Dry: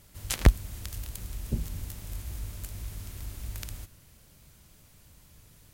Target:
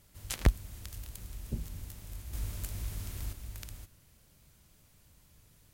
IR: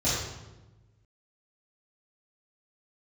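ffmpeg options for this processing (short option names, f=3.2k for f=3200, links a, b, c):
-filter_complex "[0:a]asettb=1/sr,asplit=3[a][b][c];[a]atrim=end=2.334[d];[b]atrim=start=2.33:end=3.33,asetpts=PTS-STARTPTS,afade=t=in:d=0.004:c=qsin,afade=t=out:st=0.996:d=0.004:c=qsin,acontrast=72[e];[c]atrim=start=3.326[f];[d][e]acrossfade=d=0.004:c1=hsin:c2=qsin[g];[g][f]acrossfade=d=0.004:c1=qsin:c2=hsin,volume=-6dB"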